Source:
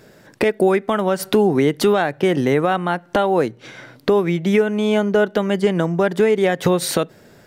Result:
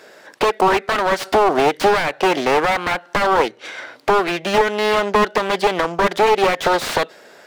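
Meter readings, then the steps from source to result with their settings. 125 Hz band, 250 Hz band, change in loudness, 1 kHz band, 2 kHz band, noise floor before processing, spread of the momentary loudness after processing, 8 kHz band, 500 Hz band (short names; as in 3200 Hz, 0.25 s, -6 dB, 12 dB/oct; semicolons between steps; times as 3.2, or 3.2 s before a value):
-9.0 dB, -6.5 dB, +0.5 dB, +7.0 dB, +5.0 dB, -49 dBFS, 6 LU, -1.0 dB, -1.0 dB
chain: self-modulated delay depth 0.63 ms; dynamic EQ 4100 Hz, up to +5 dB, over -38 dBFS, Q 0.84; HPF 550 Hz 12 dB/oct; high shelf 9300 Hz -9.5 dB; slew limiter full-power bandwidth 110 Hz; gain +8 dB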